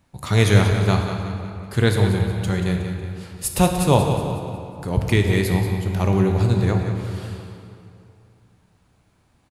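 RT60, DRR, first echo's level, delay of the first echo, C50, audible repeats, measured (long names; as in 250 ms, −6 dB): 2.6 s, 2.0 dB, −10.0 dB, 183 ms, 3.0 dB, 3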